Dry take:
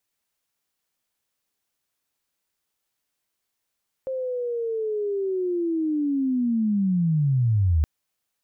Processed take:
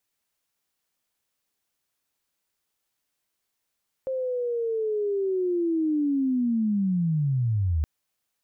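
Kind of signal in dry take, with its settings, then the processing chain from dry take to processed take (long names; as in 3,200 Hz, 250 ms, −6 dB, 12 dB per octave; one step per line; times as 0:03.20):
glide linear 530 Hz → 72 Hz −25.5 dBFS → −16.5 dBFS 3.77 s
brickwall limiter −21 dBFS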